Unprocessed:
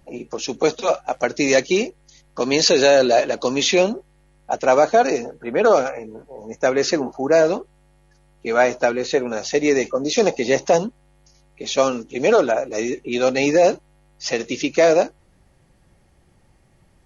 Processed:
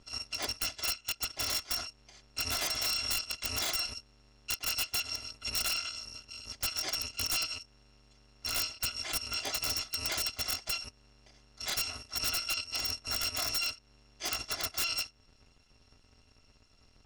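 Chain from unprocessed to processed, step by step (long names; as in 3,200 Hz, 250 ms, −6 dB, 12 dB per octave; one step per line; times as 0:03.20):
samples in bit-reversed order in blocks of 256 samples
low-pass filter 6,100 Hz 24 dB per octave
low-shelf EQ 110 Hz −4.5 dB
downward compressor 8 to 1, threshold −30 dBFS, peak gain reduction 17 dB
wrap-around overflow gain 25 dB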